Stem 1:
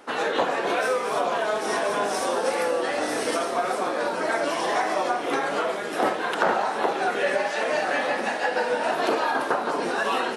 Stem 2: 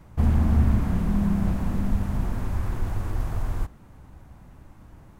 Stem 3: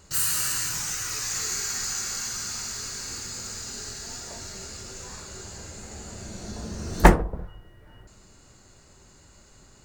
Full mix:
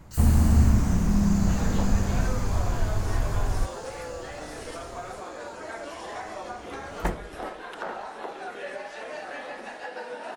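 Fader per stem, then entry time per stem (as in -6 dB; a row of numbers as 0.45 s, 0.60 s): -12.5 dB, +1.0 dB, -14.0 dB; 1.40 s, 0.00 s, 0.00 s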